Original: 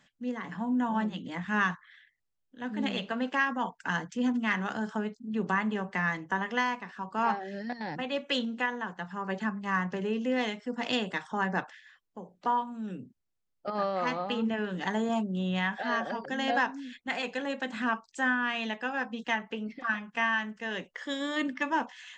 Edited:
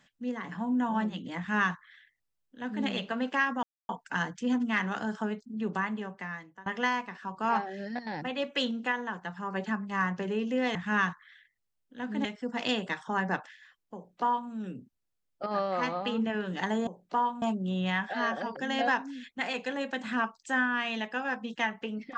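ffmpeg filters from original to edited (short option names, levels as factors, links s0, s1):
-filter_complex "[0:a]asplit=7[s0][s1][s2][s3][s4][s5][s6];[s0]atrim=end=3.63,asetpts=PTS-STARTPTS,afade=t=out:st=3.626:d=0.004:c=hsin,apad=pad_dur=0.26[s7];[s1]atrim=start=3.63:end=6.4,asetpts=PTS-STARTPTS,afade=t=in:d=0.004:c=hsin,afade=t=out:st=1.56:d=1.21:silence=0.0668344[s8];[s2]atrim=start=6.4:end=10.492,asetpts=PTS-STARTPTS,afade=t=in:d=0.004:c=hsin:silence=0.0668344[s9];[s3]atrim=start=1.368:end=2.872[s10];[s4]atrim=start=10.488:end=15.112[s11];[s5]atrim=start=12.188:end=12.742[s12];[s6]atrim=start=15.108[s13];[s7][s8][s9]concat=n=3:v=0:a=1[s14];[s14][s10]acrossfade=d=0.004:c1=hsin:c2=hsin[s15];[s15][s11]acrossfade=d=0.004:c1=hsin:c2=hsin[s16];[s16][s12]acrossfade=d=0.004:c1=hsin:c2=hsin[s17];[s17][s13]acrossfade=d=0.004:c1=hsin:c2=hsin"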